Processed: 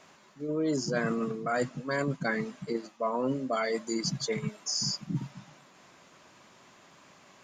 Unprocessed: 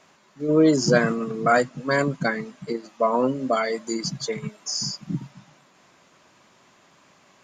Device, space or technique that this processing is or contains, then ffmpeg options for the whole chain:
compression on the reversed sound: -af "areverse,acompressor=threshold=-27dB:ratio=6,areverse"

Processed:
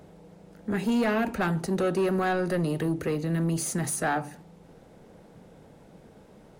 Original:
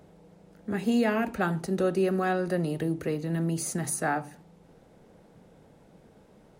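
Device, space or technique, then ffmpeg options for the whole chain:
saturation between pre-emphasis and de-emphasis: -af "highshelf=frequency=4300:gain=6.5,asoftclip=type=tanh:threshold=-24dB,highshelf=frequency=4300:gain=-6.5,volume=4dB"

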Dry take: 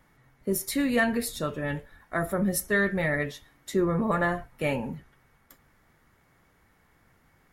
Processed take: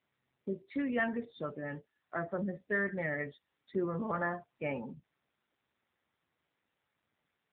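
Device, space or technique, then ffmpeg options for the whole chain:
mobile call with aggressive noise cancelling: -af "highpass=frequency=160:poles=1,afftdn=noise_reduction=21:noise_floor=-37,volume=-6.5dB" -ar 8000 -c:a libopencore_amrnb -b:a 7950

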